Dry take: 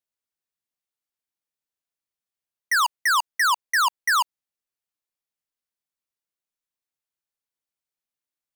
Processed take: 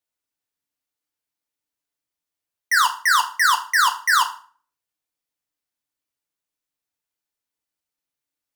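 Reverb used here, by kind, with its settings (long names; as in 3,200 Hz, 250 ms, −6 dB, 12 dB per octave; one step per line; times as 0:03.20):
feedback delay network reverb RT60 0.44 s, low-frequency decay 1.25×, high-frequency decay 0.8×, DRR 3.5 dB
level +2 dB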